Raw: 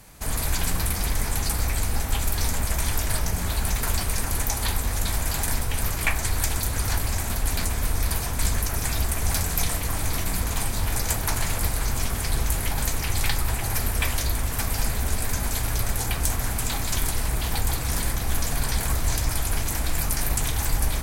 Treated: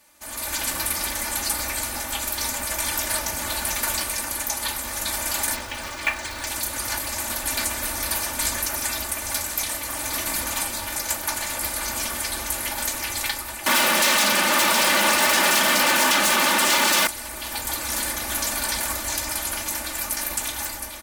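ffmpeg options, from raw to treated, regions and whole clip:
-filter_complex "[0:a]asettb=1/sr,asplit=3[a][b][c];[a]atrim=end=5.554[d];[b]atrim=start=5.55:end=6.47,asetpts=PTS-STARTPTS,afade=t=in:d=0.004:c=qsin,afade=t=out:st=0.916:d=0.004:c=qsin,lowpass=5.3k,acrusher=bits=5:mode=log:mix=0:aa=0.000001[e];[c]atrim=start=6.466[f];[d][e]acrossfade=d=0.004:c1=hsin:c2=qsin[g];[g][f]acrossfade=d=0.004:c1=qsin:c2=hsin,asettb=1/sr,asplit=3[h][i][j];[h]atrim=end=13.664[k];[i]atrim=start=13.66:end=17.07,asetpts=PTS-STARTPTS,afade=t=in:d=0.004:c=qsin,afade=t=out:st=3.406:d=0.004:c=qsin,asplit=2[l][m];[m]highpass=f=720:p=1,volume=17dB,asoftclip=type=tanh:threshold=-7.5dB[n];[l][n]amix=inputs=2:normalize=0,lowpass=f=1.5k:p=1,volume=-6dB,afreqshift=140,aeval=exprs='0.251*sin(PI/2*5.01*val(0)/0.251)':c=same[o];[j]atrim=start=17.066[p];[k][o]acrossfade=d=0.004:c1=hsin:c2=qsin[q];[q][p]acrossfade=d=0.004:c1=qsin:c2=hsin,highpass=f=540:p=1,aecho=1:1:3.4:0.86,dynaudnorm=f=130:g=7:m=11.5dB,volume=-7.5dB"

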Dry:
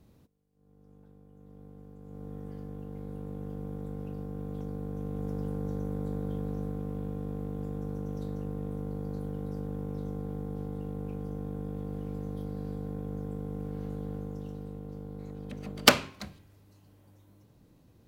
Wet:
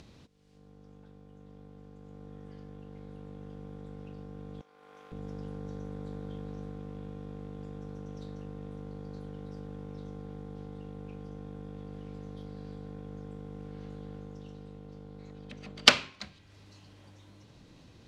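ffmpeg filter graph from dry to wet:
-filter_complex "[0:a]asettb=1/sr,asplit=3[a][b][c];[a]atrim=end=4.614[d];[b]atrim=start=4.61:end=5.12,asetpts=PTS-STARTPTS,afade=t=in:d=0.004:c=qsin,afade=t=out:st=0.506:d=0.004:c=qsin,highpass=1.1k,equalizer=f=6.3k:w=0.45:g=-9.5,aeval=exprs='clip(val(0),-1,0.00251)':c=same[e];[c]atrim=start=5.116[f];[d][e]acrossfade=d=0.004:c1=hsin:c2=qsin[g];[g][f]acrossfade=d=0.004:c1=qsin:c2=hsin,acompressor=mode=upward:threshold=-37dB:ratio=2.5,lowpass=6.7k,equalizer=f=3.7k:w=0.39:g=10.5,volume=-7dB"

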